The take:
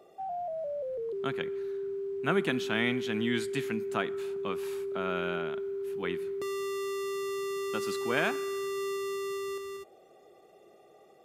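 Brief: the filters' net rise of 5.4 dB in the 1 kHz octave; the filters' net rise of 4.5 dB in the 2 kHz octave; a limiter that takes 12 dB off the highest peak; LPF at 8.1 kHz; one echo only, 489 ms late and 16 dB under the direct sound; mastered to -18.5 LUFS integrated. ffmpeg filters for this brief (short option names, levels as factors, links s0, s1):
-af "lowpass=8100,equalizer=f=1000:t=o:g=6.5,equalizer=f=2000:t=o:g=3.5,alimiter=limit=0.0891:level=0:latency=1,aecho=1:1:489:0.158,volume=5.31"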